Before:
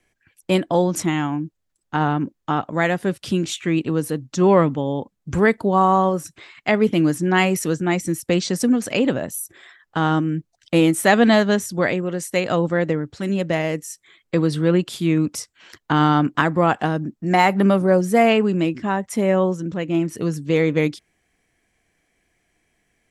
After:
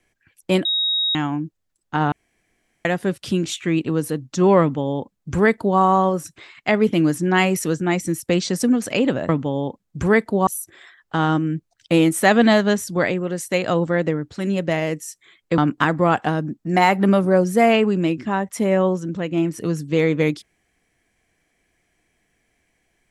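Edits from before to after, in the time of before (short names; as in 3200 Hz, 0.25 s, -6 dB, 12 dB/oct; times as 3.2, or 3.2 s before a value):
0.65–1.15 bleep 3780 Hz -17.5 dBFS
2.12–2.85 room tone
4.61–5.79 copy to 9.29
14.4–16.15 cut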